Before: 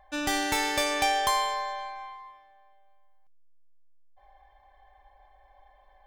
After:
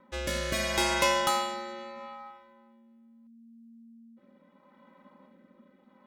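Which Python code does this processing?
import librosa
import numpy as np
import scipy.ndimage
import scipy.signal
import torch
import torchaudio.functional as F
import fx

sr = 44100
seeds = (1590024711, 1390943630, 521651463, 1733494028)

y = x * np.sin(2.0 * np.pi * 230.0 * np.arange(len(x)) / sr)
y = fx.rotary(y, sr, hz=0.75)
y = y * 10.0 ** (4.0 / 20.0)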